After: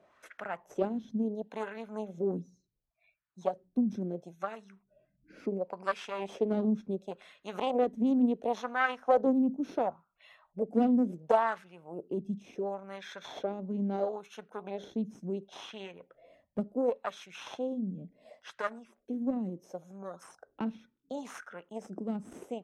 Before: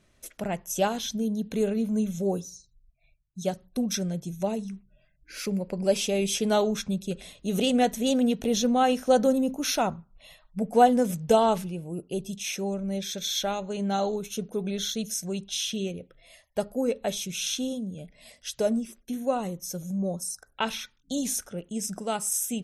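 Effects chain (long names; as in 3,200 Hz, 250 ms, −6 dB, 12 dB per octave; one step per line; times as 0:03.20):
harmonic generator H 6 −14 dB, 7 −26 dB, 8 −24 dB, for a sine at −7.5 dBFS
LFO wah 0.71 Hz 220–1,600 Hz, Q 2.6
multiband upward and downward compressor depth 40%
level +4 dB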